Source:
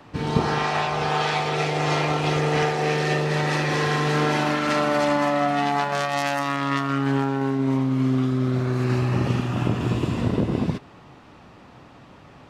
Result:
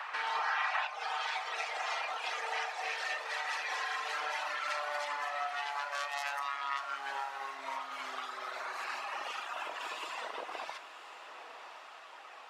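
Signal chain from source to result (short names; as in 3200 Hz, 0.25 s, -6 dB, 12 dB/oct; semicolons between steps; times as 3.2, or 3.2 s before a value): reverb removal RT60 1.6 s; bell 1600 Hz +15 dB 2.3 oct, from 0.87 s +3 dB; HPF 710 Hz 24 dB/oct; compressor 2.5:1, threshold -39 dBFS, peak gain reduction 17 dB; diffused feedback echo 1.038 s, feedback 54%, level -11 dB; shoebox room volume 910 m³, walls furnished, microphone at 0.59 m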